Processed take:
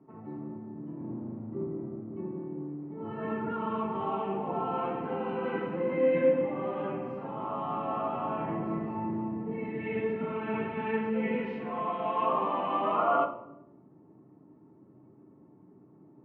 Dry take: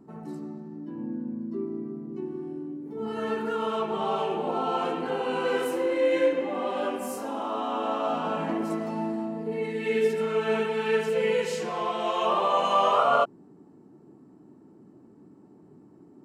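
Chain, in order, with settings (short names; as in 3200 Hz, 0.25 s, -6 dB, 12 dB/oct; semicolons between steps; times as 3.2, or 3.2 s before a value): octaver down 1 oct, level +4 dB; speaker cabinet 270–2200 Hz, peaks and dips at 470 Hz -6 dB, 700 Hz -4 dB, 1600 Hz -9 dB; reverb RT60 0.80 s, pre-delay 4 ms, DRR 2.5 dB; gain -3.5 dB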